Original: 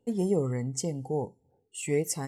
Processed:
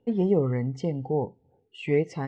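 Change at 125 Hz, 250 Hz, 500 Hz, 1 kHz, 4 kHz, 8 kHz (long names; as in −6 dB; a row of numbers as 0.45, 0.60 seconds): +4.0 dB, +4.0 dB, +4.0 dB, +4.0 dB, −3.0 dB, below −20 dB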